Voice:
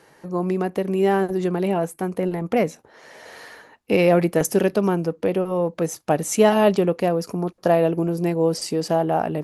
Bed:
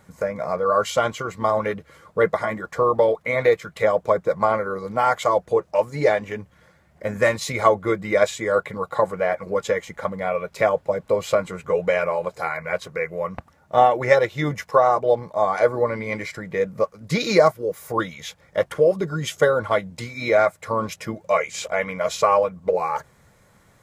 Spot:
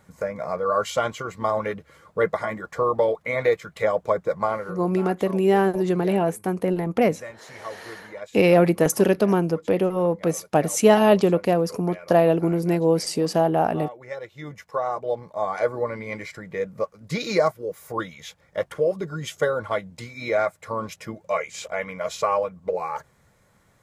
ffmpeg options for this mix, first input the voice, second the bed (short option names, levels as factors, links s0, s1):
-filter_complex "[0:a]adelay=4450,volume=1.06[s0];[1:a]volume=3.76,afade=t=out:st=4.34:d=0.67:silence=0.149624,afade=t=in:st=14.09:d=1.49:silence=0.188365[s1];[s0][s1]amix=inputs=2:normalize=0"